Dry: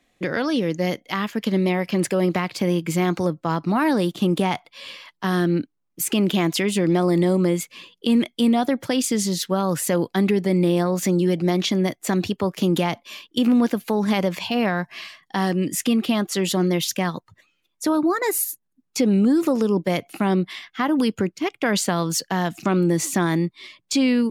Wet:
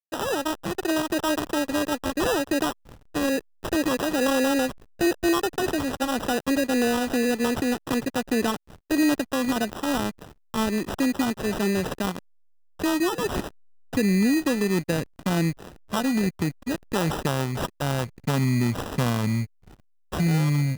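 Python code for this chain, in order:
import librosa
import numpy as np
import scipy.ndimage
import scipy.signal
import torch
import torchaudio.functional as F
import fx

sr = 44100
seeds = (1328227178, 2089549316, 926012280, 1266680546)

y = fx.speed_glide(x, sr, from_pct=175, to_pct=59)
y = fx.sample_hold(y, sr, seeds[0], rate_hz=2200.0, jitter_pct=0)
y = fx.backlash(y, sr, play_db=-31.0)
y = y * librosa.db_to_amplitude(-3.0)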